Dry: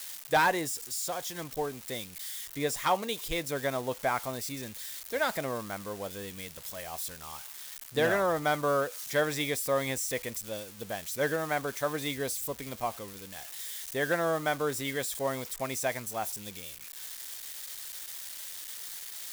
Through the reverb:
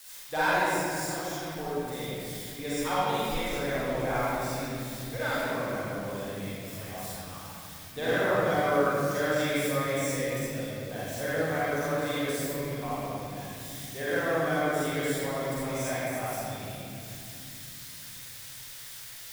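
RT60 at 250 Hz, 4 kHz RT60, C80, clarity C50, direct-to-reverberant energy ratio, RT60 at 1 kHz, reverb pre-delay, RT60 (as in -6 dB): 4.9 s, 1.7 s, -4.0 dB, -7.0 dB, -10.5 dB, 2.3 s, 36 ms, 2.6 s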